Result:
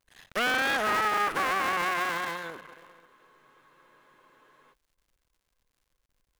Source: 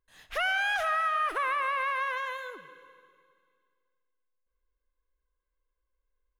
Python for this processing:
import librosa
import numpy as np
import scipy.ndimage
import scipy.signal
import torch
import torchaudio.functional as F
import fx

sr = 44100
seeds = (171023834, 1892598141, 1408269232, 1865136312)

y = fx.cycle_switch(x, sr, every=3, mode='muted')
y = fx.dmg_crackle(y, sr, seeds[0], per_s=160.0, level_db=-63.0)
y = fx.spec_freeze(y, sr, seeds[1], at_s=3.08, hold_s=1.64)
y = F.gain(torch.from_numpy(y), 3.5).numpy()